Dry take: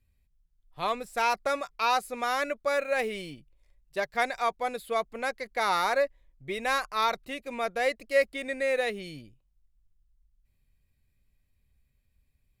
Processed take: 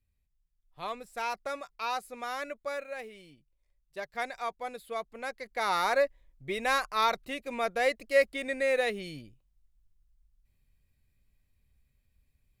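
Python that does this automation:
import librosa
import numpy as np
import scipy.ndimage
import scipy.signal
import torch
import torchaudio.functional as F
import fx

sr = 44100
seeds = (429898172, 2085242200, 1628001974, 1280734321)

y = fx.gain(x, sr, db=fx.line((2.68, -7.5), (3.14, -15.0), (4.21, -7.0), (5.15, -7.0), (6.0, 0.0)))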